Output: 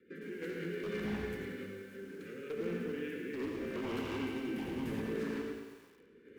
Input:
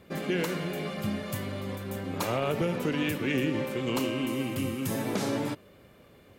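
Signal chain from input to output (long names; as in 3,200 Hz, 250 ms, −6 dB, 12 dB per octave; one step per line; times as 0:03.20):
elliptic band-stop filter 460–1,500 Hz
three-way crossover with the lows and the highs turned down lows −24 dB, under 250 Hz, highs −21 dB, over 2,100 Hz
mains-hum notches 50/100/150 Hz
in parallel at 0 dB: downward compressor, threshold −46 dBFS, peak gain reduction 16.5 dB
on the sum: brickwall limiter −29.5 dBFS, peak gain reduction 9 dB
sample-and-hold tremolo 2.4 Hz, depth 75%
wave folding −36 dBFS
rotating-speaker cabinet horn 6 Hz, later 0.75 Hz, at 0:02.29
feedback echo with a high-pass in the loop 90 ms, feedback 72%, high-pass 280 Hz, level −9.5 dB
on a send at −5.5 dB: convolution reverb RT60 0.45 s, pre-delay 55 ms
on the sum: feedback echo at a low word length 108 ms, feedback 55%, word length 10 bits, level −9 dB
level +3 dB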